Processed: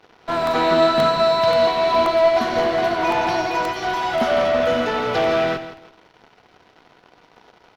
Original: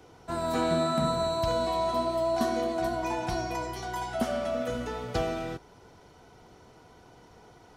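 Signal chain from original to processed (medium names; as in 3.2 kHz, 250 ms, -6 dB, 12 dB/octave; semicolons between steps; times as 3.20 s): high-pass 94 Hz 24 dB/octave; RIAA curve recording; in parallel at -11 dB: fuzz box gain 52 dB, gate -50 dBFS; on the sum: distance through air 300 m; feedback delay 165 ms, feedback 31%, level -8.5 dB; on a send at -14.5 dB: reverberation RT60 0.55 s, pre-delay 46 ms; on the sum: crackling interface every 0.53 s, samples 64, repeat, from 0.47 s; upward expansion 1.5:1, over -44 dBFS; trim +6.5 dB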